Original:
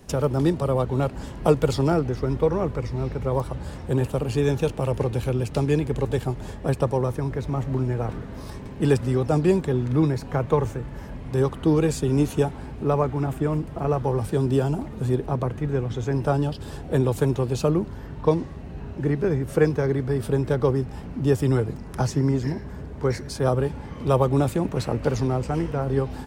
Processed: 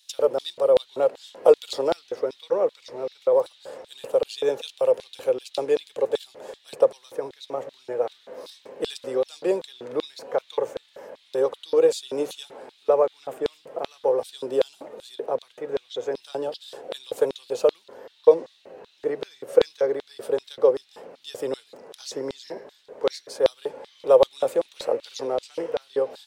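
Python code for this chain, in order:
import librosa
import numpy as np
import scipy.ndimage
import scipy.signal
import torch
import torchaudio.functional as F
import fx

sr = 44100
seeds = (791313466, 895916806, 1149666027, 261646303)

y = fx.hum_notches(x, sr, base_hz=50, count=3)
y = fx.filter_lfo_highpass(y, sr, shape='square', hz=2.6, low_hz=510.0, high_hz=3700.0, q=5.7)
y = F.gain(torch.from_numpy(y), -4.5).numpy()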